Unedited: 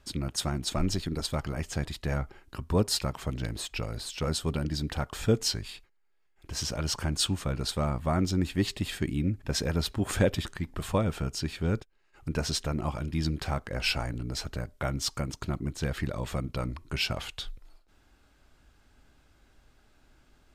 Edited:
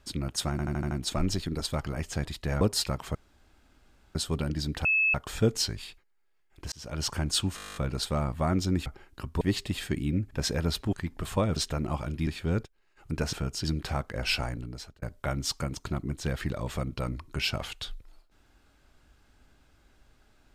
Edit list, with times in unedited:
0.51 stutter 0.08 s, 6 plays
2.21–2.76 move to 8.52
3.3–4.3 room tone
5 add tone 2600 Hz -21 dBFS 0.29 s
6.58–6.91 fade in
7.42 stutter 0.02 s, 11 plays
10.04–10.5 cut
11.13–11.44 swap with 12.5–13.21
14.04–14.59 fade out

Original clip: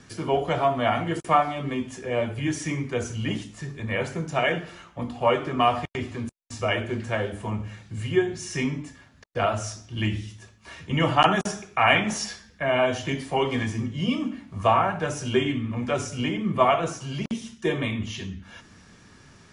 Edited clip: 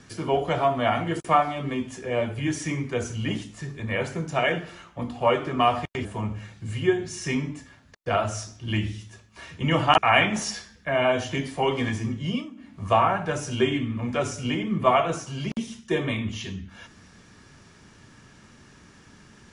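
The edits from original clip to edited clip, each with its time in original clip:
6.05–7.34 cut
11.27–11.72 cut
14–14.53 dip -15 dB, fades 0.24 s

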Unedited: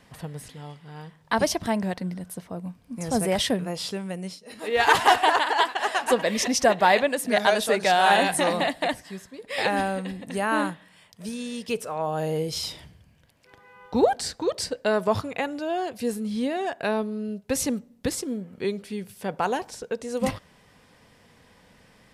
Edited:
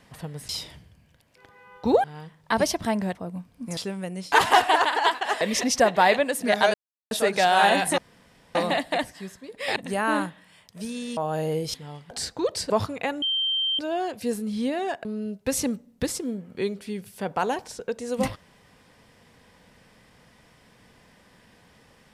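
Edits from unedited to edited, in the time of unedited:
0.49–0.85 swap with 12.58–14.13
1.96–2.45 cut
3.07–3.84 cut
4.39–4.86 cut
5.95–6.25 cut
7.58 insert silence 0.37 s
8.45 insert room tone 0.57 s
9.66–10.2 cut
11.61–12.01 cut
14.73–15.05 cut
15.57 add tone 3140 Hz -22 dBFS 0.57 s
16.83–17.08 cut

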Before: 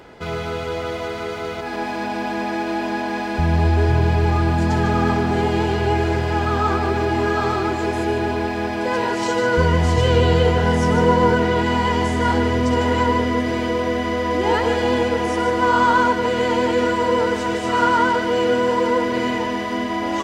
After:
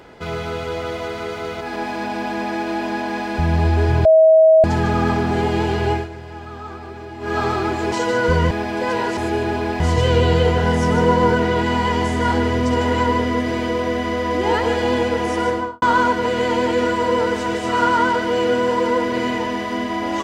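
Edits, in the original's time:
4.05–4.64 bleep 639 Hz -7 dBFS
5.91–7.37 dip -14 dB, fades 0.17 s
7.92–8.55 swap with 9.21–9.8
15.47–15.82 studio fade out

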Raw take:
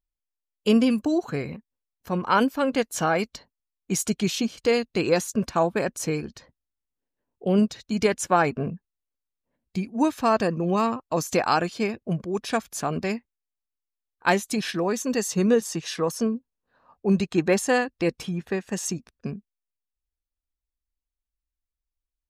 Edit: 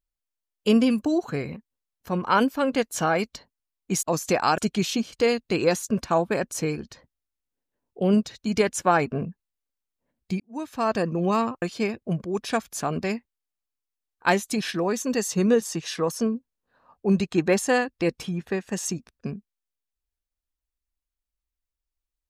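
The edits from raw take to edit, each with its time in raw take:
9.85–10.53 fade in
11.07–11.62 move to 4.03

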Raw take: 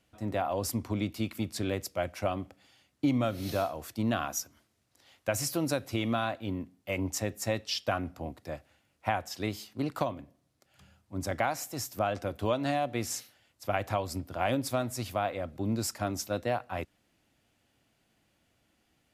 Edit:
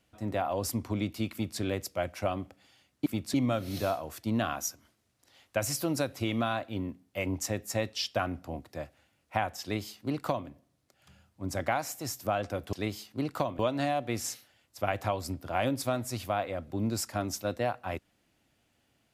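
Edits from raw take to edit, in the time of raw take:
1.32–1.6 copy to 3.06
9.34–10.2 copy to 12.45

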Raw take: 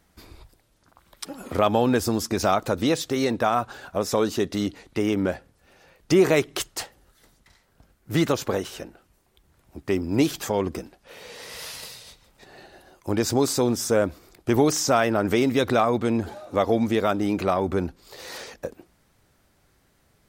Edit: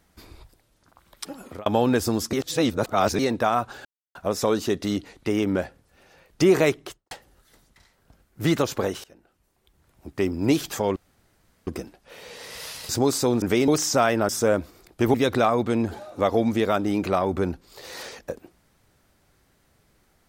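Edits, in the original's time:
1.31–1.66 fade out
2.33–3.19 reverse
3.85 insert silence 0.30 s
6.35–6.81 studio fade out
8.74–9.94 fade in equal-power, from -23.5 dB
10.66 insert room tone 0.71 s
11.88–13.24 cut
13.77–14.62 swap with 15.23–15.49

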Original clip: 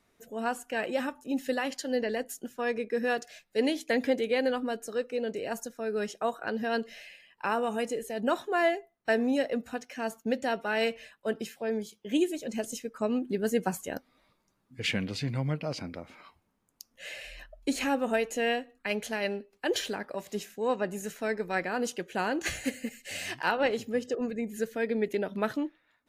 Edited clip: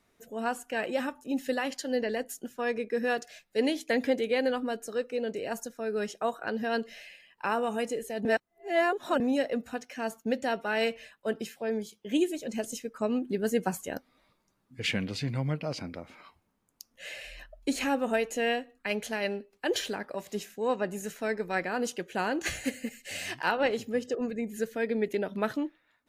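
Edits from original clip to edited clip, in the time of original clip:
8.25–9.2 reverse

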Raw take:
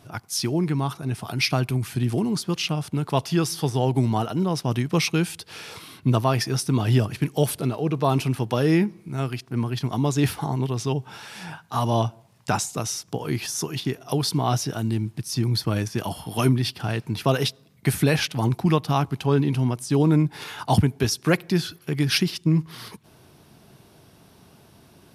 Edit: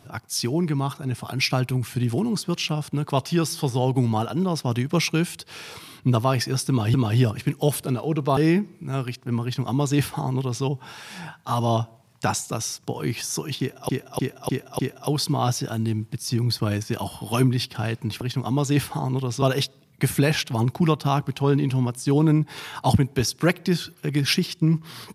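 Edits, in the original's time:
6.69–6.94 loop, 2 plays
8.12–8.62 cut
9.68–10.89 copy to 17.26
13.84–14.14 loop, 5 plays

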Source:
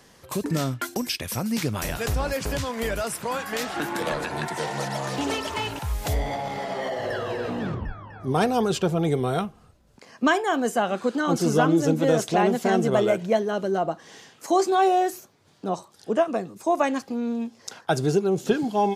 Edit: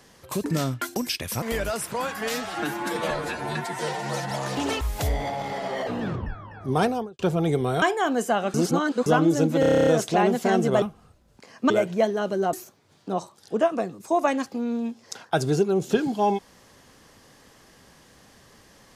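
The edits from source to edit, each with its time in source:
1.42–2.73 cut
3.52–4.92 stretch 1.5×
5.42–5.87 cut
6.93–7.46 cut
8.39–8.78 studio fade out
9.41–10.29 move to 13.02
11.01–11.53 reverse
12.07 stutter 0.03 s, 10 plays
13.85–15.09 cut

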